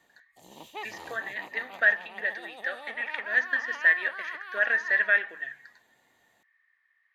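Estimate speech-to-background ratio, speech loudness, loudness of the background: 17.5 dB, −26.5 LKFS, −44.0 LKFS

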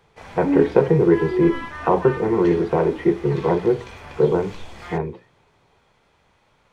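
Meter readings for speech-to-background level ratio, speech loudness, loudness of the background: 17.0 dB, −20.0 LKFS, −37.0 LKFS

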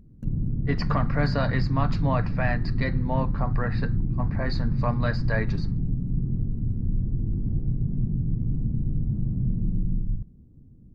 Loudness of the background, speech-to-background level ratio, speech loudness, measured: −28.5 LKFS, −2.0 dB, −30.5 LKFS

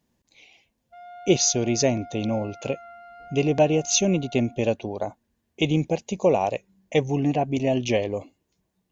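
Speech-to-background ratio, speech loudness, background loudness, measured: 19.5 dB, −24.0 LKFS, −43.5 LKFS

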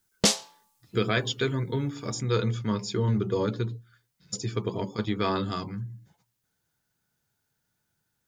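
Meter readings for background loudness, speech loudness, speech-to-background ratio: −25.5 LKFS, −29.5 LKFS, −4.0 dB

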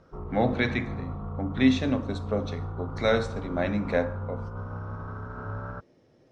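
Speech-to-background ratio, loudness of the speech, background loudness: 8.5 dB, −28.0 LKFS, −36.5 LKFS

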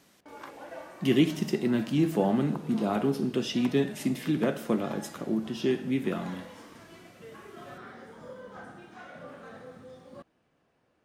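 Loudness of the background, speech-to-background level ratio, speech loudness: −47.5 LKFS, 19.0 dB, −28.5 LKFS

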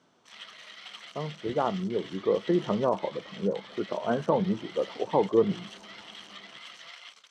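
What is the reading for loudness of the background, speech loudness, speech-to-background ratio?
−45.0 LKFS, −29.0 LKFS, 16.0 dB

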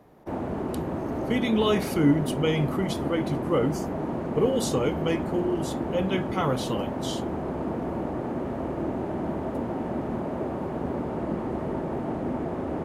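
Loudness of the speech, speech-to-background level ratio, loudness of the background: −27.5 LKFS, 3.5 dB, −31.0 LKFS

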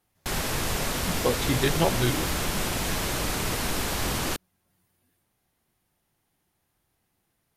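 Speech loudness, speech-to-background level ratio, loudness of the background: −28.0 LKFS, 0.0 dB, −28.0 LKFS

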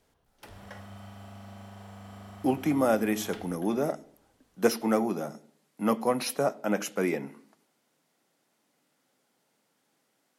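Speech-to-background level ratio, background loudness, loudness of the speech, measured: 18.5 dB, −47.5 LKFS, −29.0 LKFS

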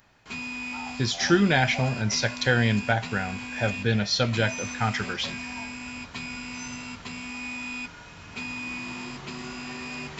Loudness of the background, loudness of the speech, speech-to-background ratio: −35.0 LKFS, −25.0 LKFS, 10.0 dB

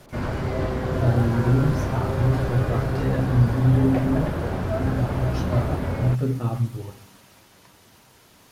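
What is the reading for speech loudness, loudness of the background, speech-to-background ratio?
−24.5 LKFS, −26.5 LKFS, 2.0 dB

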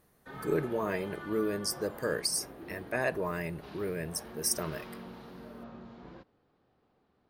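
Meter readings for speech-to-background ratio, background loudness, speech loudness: 13.0 dB, −46.5 LKFS, −33.5 LKFS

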